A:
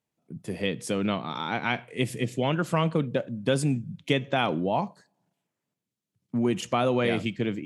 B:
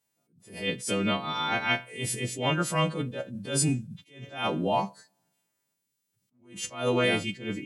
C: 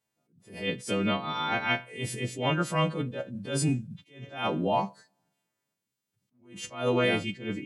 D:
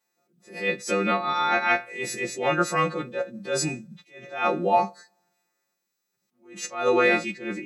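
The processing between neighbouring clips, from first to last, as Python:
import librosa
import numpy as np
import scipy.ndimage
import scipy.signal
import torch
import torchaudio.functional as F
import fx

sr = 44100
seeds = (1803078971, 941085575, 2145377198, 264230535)

y1 = fx.freq_snap(x, sr, grid_st=2)
y1 = fx.attack_slew(y1, sr, db_per_s=130.0)
y2 = fx.high_shelf(y1, sr, hz=5300.0, db=-9.5)
y3 = scipy.signal.sosfilt(scipy.signal.butter(2, 320.0, 'highpass', fs=sr, output='sos'), y2)
y3 = y3 + 0.86 * np.pad(y3, (int(5.6 * sr / 1000.0), 0))[:len(y3)]
y3 = F.gain(torch.from_numpy(y3), 4.0).numpy()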